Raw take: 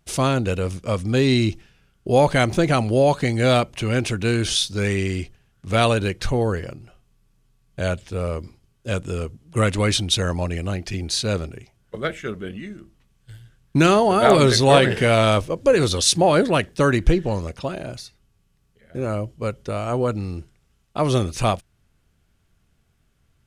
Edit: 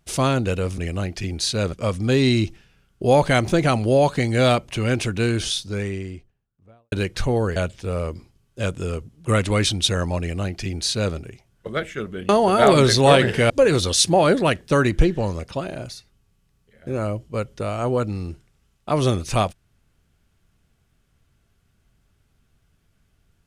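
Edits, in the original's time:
4.09–5.97 studio fade out
6.61–7.84 cut
10.48–11.43 copy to 0.78
12.57–13.92 cut
15.13–15.58 cut

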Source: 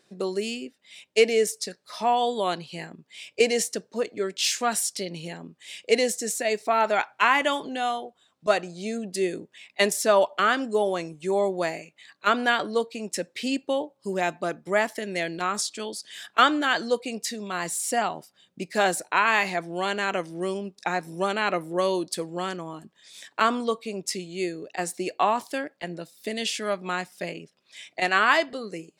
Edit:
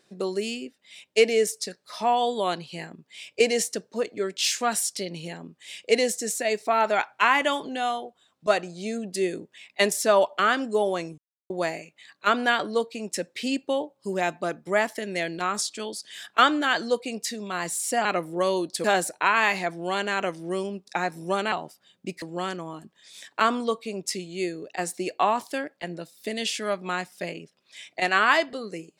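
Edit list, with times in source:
11.18–11.5 mute
18.05–18.75 swap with 21.43–22.22

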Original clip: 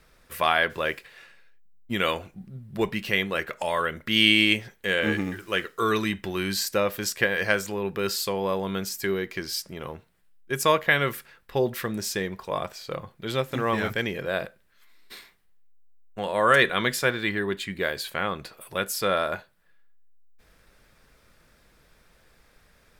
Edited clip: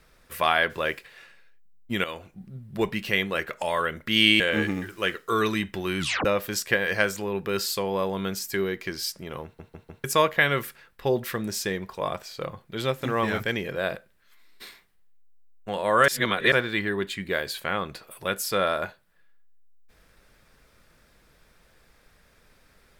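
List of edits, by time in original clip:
2.04–2.49 fade in, from -12.5 dB
4.4–4.9 cut
6.49 tape stop 0.26 s
9.94 stutter in place 0.15 s, 4 plays
16.58–17.02 reverse

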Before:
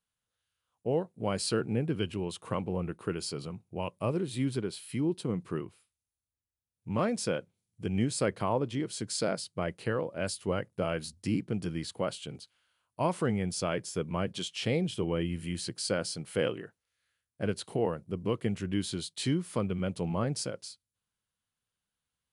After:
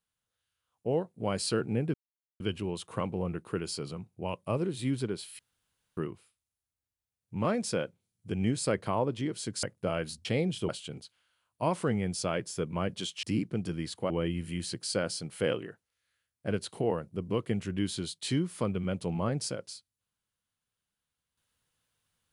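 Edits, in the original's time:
1.94 insert silence 0.46 s
4.93–5.51 room tone
9.17–10.58 cut
11.2–12.07 swap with 14.61–15.05

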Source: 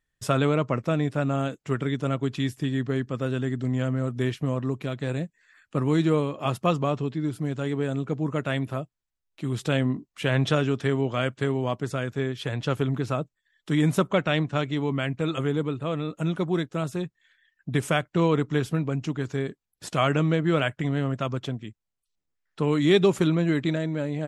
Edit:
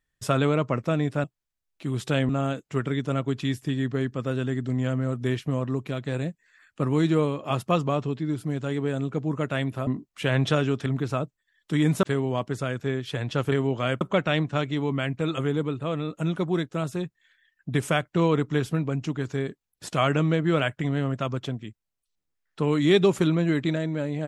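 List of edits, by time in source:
8.82–9.87 move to 1.24
10.86–11.35 swap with 12.84–14.01

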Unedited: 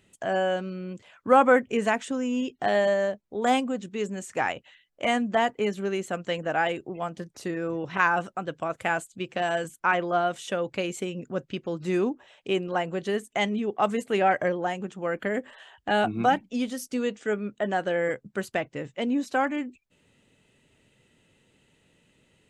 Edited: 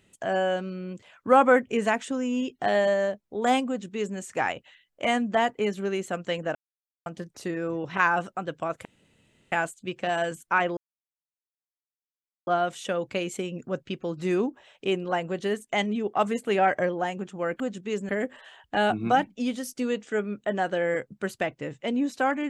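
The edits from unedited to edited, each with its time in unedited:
3.68–4.17 copy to 15.23
6.55–7.06 mute
8.85 insert room tone 0.67 s
10.1 insert silence 1.70 s

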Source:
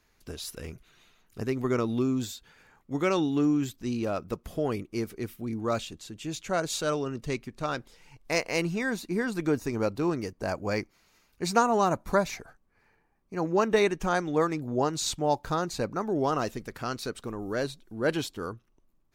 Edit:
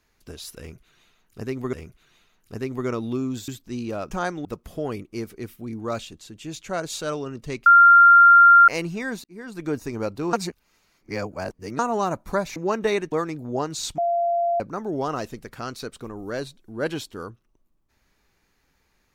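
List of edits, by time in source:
0.59–1.73 loop, 2 plays
2.34–3.62 cut
7.46–8.48 bleep 1390 Hz -8 dBFS
9.04–9.55 fade in linear
10.13–11.59 reverse
12.36–13.45 cut
14.01–14.35 move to 4.25
15.21–15.83 bleep 688 Hz -19 dBFS

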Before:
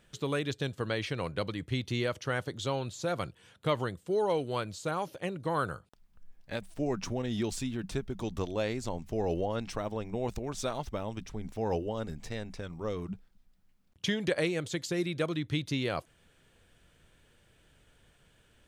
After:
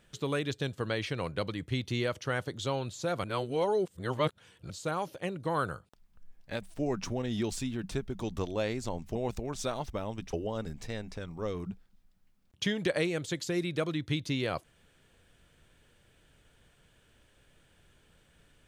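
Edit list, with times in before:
3.24–4.7 reverse
9.15–10.14 cut
11.32–11.75 cut

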